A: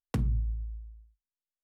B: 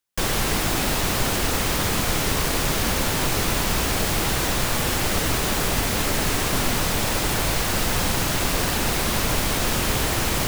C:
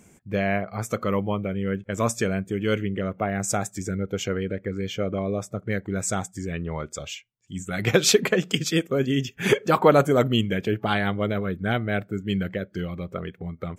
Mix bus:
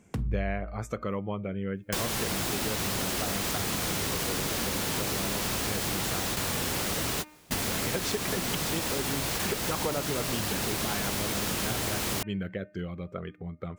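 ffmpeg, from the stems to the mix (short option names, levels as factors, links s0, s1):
-filter_complex "[0:a]volume=0.75[s0];[1:a]highpass=f=130:p=1,acrossover=split=370|3000[s1][s2][s3];[s2]acompressor=threshold=0.0398:ratio=6[s4];[s1][s4][s3]amix=inputs=3:normalize=0,adelay=1750,volume=1.06[s5];[2:a]highshelf=f=7400:g=-11,volume=0.562,asplit=2[s6][s7];[s7]apad=whole_len=539214[s8];[s5][s8]sidechaingate=range=0.0224:threshold=0.00447:ratio=16:detection=peak[s9];[s9][s6]amix=inputs=2:normalize=0,bandreject=f=304.1:t=h:w=4,bandreject=f=608.2:t=h:w=4,bandreject=f=912.3:t=h:w=4,bandreject=f=1216.4:t=h:w=4,bandreject=f=1520.5:t=h:w=4,bandreject=f=1824.6:t=h:w=4,bandreject=f=2128.7:t=h:w=4,bandreject=f=2432.8:t=h:w=4,bandreject=f=2736.9:t=h:w=4,acompressor=threshold=0.0447:ratio=6,volume=1[s10];[s0][s10]amix=inputs=2:normalize=0"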